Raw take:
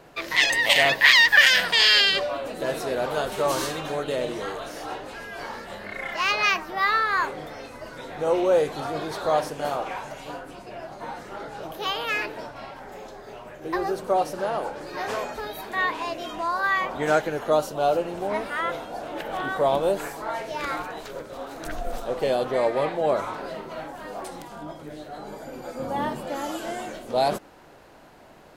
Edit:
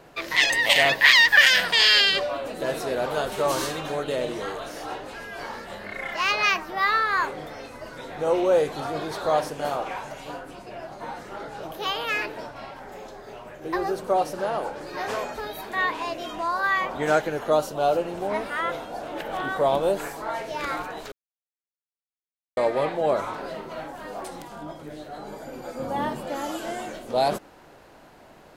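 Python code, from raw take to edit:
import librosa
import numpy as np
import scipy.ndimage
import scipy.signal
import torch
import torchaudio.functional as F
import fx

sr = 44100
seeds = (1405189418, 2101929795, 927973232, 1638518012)

y = fx.edit(x, sr, fx.silence(start_s=21.12, length_s=1.45), tone=tone)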